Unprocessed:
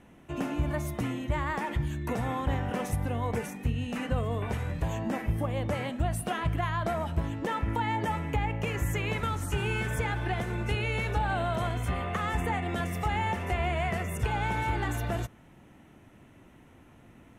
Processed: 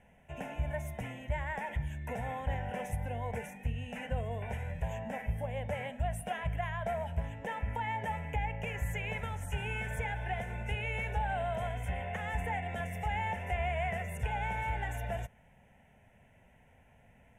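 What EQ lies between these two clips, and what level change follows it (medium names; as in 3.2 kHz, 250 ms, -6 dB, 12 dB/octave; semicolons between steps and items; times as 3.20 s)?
peaking EQ 120 Hz -4 dB 0.9 oct; treble shelf 11 kHz -9 dB; static phaser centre 1.2 kHz, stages 6; -2.5 dB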